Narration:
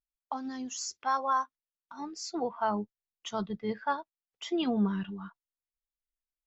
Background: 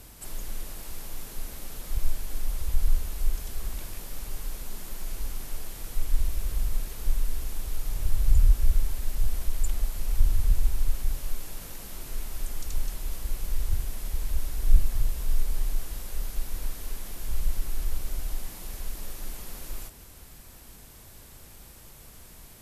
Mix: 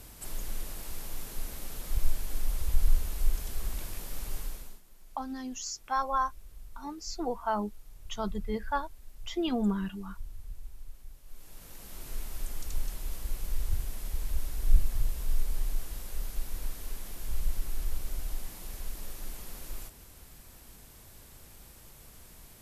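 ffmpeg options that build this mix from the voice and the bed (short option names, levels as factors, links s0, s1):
-filter_complex "[0:a]adelay=4850,volume=0.944[s0];[1:a]volume=6.31,afade=t=out:st=4.37:d=0.44:silence=0.105925,afade=t=in:st=11.25:d=0.85:silence=0.141254[s1];[s0][s1]amix=inputs=2:normalize=0"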